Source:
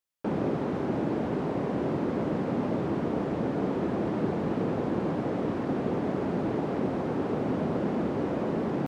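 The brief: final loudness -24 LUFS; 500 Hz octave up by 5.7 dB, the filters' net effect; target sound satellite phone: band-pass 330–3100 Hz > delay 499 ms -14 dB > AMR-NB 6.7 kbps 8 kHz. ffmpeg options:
-af "highpass=330,lowpass=3100,equalizer=f=500:t=o:g=8.5,aecho=1:1:499:0.2,volume=1.68" -ar 8000 -c:a libopencore_amrnb -b:a 6700

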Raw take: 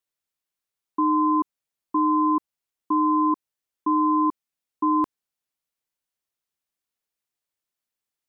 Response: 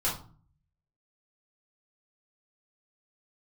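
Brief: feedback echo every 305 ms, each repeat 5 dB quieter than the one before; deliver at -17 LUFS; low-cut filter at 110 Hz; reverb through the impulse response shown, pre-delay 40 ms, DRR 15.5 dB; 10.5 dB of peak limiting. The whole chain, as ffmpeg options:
-filter_complex "[0:a]highpass=110,alimiter=level_in=1.06:limit=0.0631:level=0:latency=1,volume=0.944,aecho=1:1:305|610|915|1220|1525|1830|2135:0.562|0.315|0.176|0.0988|0.0553|0.031|0.0173,asplit=2[s0][s1];[1:a]atrim=start_sample=2205,adelay=40[s2];[s1][s2]afir=irnorm=-1:irlink=0,volume=0.0668[s3];[s0][s3]amix=inputs=2:normalize=0,volume=7.5"

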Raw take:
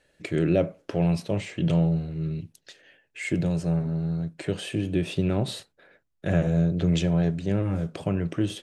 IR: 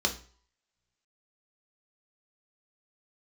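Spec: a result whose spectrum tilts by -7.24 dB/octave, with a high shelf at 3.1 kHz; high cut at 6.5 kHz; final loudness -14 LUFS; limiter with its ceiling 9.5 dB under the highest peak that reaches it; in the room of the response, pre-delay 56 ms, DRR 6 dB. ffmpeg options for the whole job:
-filter_complex "[0:a]lowpass=6500,highshelf=f=3100:g=-4,alimiter=limit=0.1:level=0:latency=1,asplit=2[s0][s1];[1:a]atrim=start_sample=2205,adelay=56[s2];[s1][s2]afir=irnorm=-1:irlink=0,volume=0.188[s3];[s0][s3]amix=inputs=2:normalize=0,volume=5.62"

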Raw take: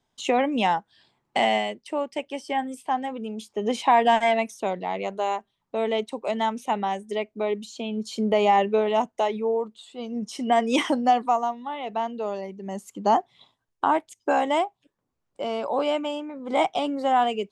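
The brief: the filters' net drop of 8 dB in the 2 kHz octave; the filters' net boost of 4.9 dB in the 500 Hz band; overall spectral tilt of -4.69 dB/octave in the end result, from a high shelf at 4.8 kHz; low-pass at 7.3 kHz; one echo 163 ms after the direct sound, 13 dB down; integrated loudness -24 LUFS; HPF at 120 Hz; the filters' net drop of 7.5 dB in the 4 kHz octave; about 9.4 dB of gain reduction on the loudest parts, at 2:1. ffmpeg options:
-af "highpass=120,lowpass=7300,equalizer=f=500:t=o:g=7,equalizer=f=2000:t=o:g=-8,equalizer=f=4000:t=o:g=-4.5,highshelf=f=4800:g=-5,acompressor=threshold=0.0316:ratio=2,aecho=1:1:163:0.224,volume=2"

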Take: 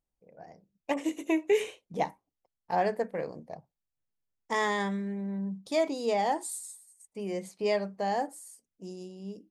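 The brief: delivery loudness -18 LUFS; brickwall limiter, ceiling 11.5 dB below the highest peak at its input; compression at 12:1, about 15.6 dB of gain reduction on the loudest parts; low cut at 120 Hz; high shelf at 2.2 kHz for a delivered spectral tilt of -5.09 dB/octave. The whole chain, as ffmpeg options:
-af "highpass=120,highshelf=f=2200:g=-4,acompressor=threshold=0.0141:ratio=12,volume=25.1,alimiter=limit=0.398:level=0:latency=1"

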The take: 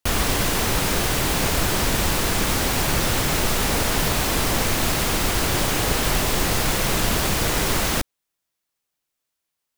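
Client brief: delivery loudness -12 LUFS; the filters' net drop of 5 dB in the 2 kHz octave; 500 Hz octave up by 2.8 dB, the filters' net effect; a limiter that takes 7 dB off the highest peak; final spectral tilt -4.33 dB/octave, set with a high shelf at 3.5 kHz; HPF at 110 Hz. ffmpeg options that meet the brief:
-af "highpass=110,equalizer=f=500:t=o:g=4,equalizer=f=2000:t=o:g=-4,highshelf=f=3500:g=-9,volume=5.62,alimiter=limit=0.708:level=0:latency=1"

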